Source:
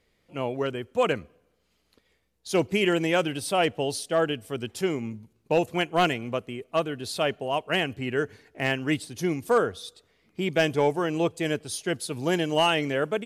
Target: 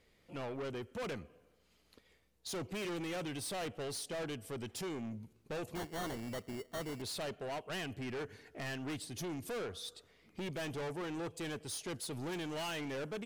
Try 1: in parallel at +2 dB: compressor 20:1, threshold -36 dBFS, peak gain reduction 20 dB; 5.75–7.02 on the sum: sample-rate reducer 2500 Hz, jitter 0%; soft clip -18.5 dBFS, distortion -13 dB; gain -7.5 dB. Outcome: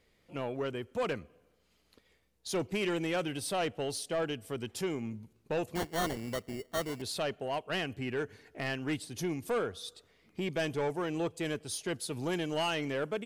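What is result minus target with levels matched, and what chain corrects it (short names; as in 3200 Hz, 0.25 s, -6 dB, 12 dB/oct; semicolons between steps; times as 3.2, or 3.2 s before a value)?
soft clip: distortion -9 dB
in parallel at +2 dB: compressor 20:1, threshold -36 dBFS, peak gain reduction 20 dB; 5.75–7.02 on the sum: sample-rate reducer 2500 Hz, jitter 0%; soft clip -30 dBFS, distortion -5 dB; gain -7.5 dB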